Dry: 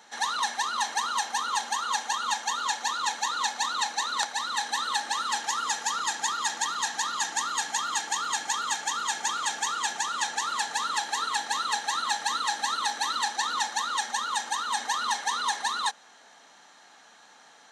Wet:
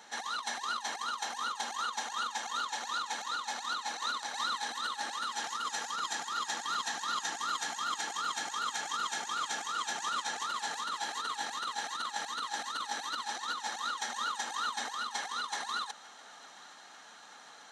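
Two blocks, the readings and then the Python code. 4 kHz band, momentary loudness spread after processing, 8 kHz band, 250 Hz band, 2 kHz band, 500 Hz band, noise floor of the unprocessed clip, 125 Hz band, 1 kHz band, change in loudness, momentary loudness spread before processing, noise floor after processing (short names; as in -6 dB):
-6.5 dB, 3 LU, -9.5 dB, -3.5 dB, -6.5 dB, -2.5 dB, -55 dBFS, n/a, -7.0 dB, -7.0 dB, 1 LU, -53 dBFS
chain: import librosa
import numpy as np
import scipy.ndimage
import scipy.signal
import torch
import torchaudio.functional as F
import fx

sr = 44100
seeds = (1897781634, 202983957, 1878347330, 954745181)

p1 = fx.over_compress(x, sr, threshold_db=-32.0, ratio=-0.5)
p2 = p1 + fx.echo_thinned(p1, sr, ms=896, feedback_pct=80, hz=420.0, wet_db=-23, dry=0)
y = p2 * librosa.db_to_amplitude(-3.5)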